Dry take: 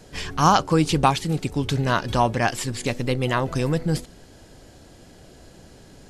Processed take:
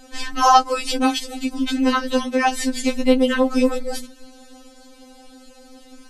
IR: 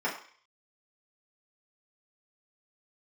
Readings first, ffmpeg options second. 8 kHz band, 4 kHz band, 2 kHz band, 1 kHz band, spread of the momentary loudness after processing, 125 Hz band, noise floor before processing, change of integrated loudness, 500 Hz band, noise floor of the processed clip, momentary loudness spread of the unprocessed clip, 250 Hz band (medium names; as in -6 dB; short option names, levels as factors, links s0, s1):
+2.5 dB, +3.5 dB, +2.0 dB, +3.0 dB, 13 LU, under -25 dB, -49 dBFS, +3.0 dB, +3.5 dB, -47 dBFS, 9 LU, +5.0 dB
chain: -af "bandreject=f=60:t=h:w=6,bandreject=f=120:t=h:w=6,bandreject=f=180:t=h:w=6,bandreject=f=240:t=h:w=6,afftfilt=real='re*3.46*eq(mod(b,12),0)':imag='im*3.46*eq(mod(b,12),0)':win_size=2048:overlap=0.75,volume=1.88"